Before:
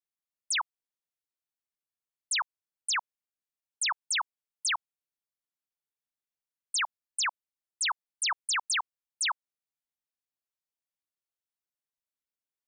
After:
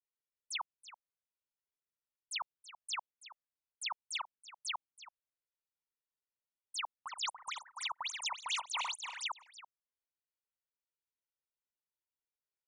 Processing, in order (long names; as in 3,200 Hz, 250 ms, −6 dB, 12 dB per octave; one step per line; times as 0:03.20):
0:06.81–0:09.22: feedback delay that plays each chunk backwards 144 ms, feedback 54%, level −1.5 dB
low-pass filter 2,600 Hz 6 dB per octave
flanger swept by the level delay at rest 2.1 ms, full sweep at −32 dBFS
single-tap delay 329 ms −15.5 dB
level −2 dB